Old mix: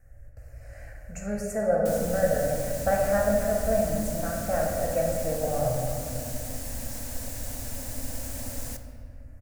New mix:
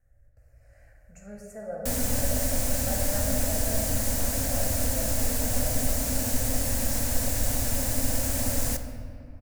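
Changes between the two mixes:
speech -12.0 dB; background +8.5 dB

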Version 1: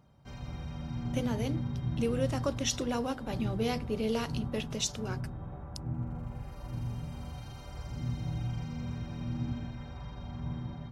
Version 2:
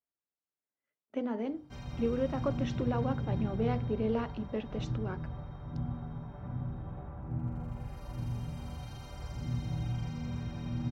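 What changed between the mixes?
speech: add LPF 1600 Hz 12 dB/oct; background: entry +1.45 s

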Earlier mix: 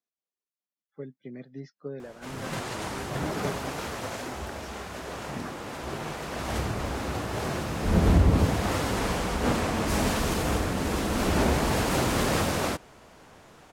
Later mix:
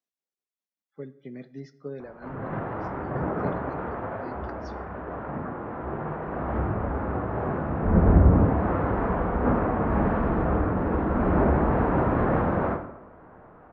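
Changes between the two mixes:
background: add LPF 1500 Hz 24 dB/oct; reverb: on, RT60 0.85 s

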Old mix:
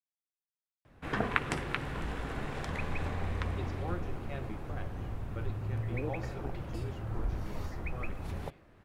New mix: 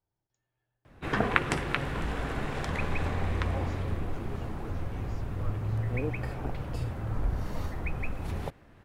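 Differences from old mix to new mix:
speech: entry -2.55 s; background +4.5 dB

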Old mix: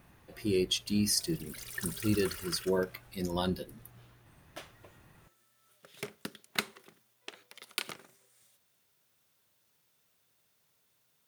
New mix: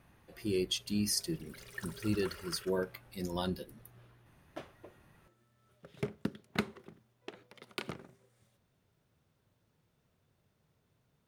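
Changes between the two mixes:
speech -3.5 dB; background: add tilt -4 dB/oct

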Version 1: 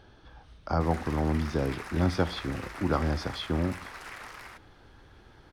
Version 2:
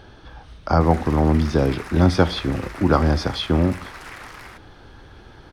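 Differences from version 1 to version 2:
speech +10.0 dB; background +4.5 dB

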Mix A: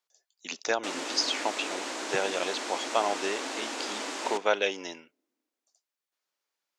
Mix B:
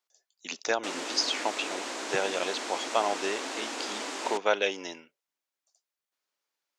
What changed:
background +3.5 dB; reverb: off

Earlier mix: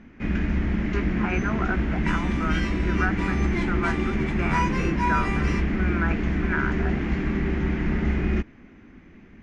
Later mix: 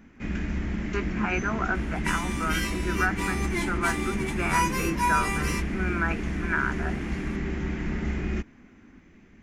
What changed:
first sound -5.5 dB; master: remove air absorption 150 m

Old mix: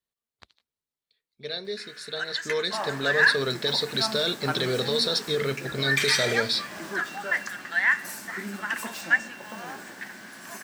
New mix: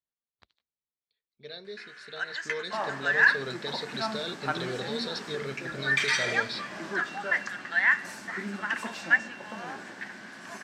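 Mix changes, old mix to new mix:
speech -8.0 dB; master: add air absorption 79 m

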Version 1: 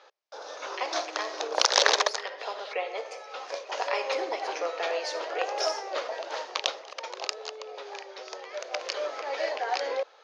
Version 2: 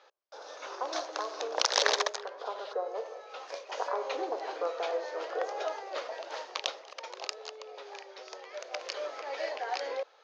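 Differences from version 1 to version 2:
speech: add rippled Chebyshev low-pass 1600 Hz, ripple 3 dB; background -5.0 dB

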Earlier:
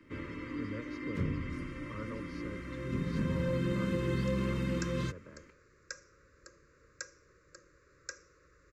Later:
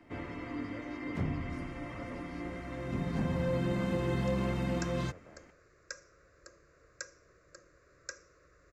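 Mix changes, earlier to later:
speech -6.5 dB; master: remove Butterworth band-stop 750 Hz, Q 1.6

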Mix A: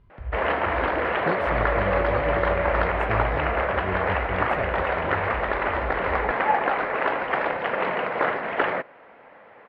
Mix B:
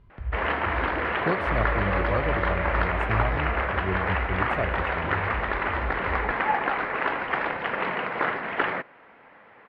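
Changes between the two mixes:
background: add bell 580 Hz -7 dB 1 oct; reverb: on, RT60 0.45 s

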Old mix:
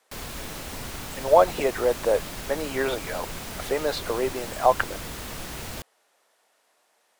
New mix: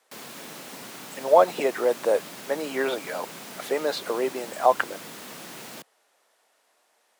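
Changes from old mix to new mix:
background -3.5 dB; master: add HPF 170 Hz 24 dB/oct

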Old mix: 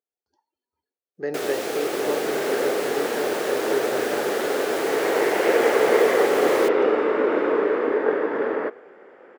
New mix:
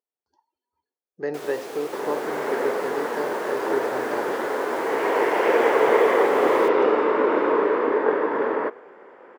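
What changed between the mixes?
first sound -9.5 dB; master: add bell 990 Hz +9 dB 0.33 oct

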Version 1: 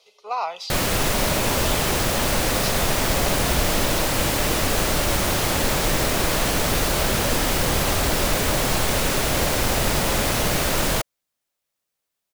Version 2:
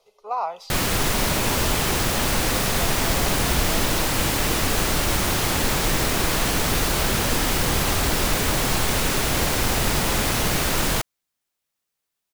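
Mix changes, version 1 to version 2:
speech: remove weighting filter D; background: add bell 580 Hz -5 dB 0.47 oct

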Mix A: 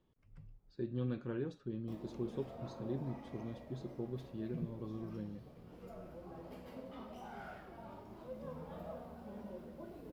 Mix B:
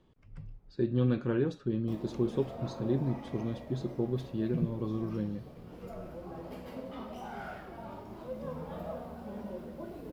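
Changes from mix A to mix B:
speech +10.0 dB; background +7.0 dB

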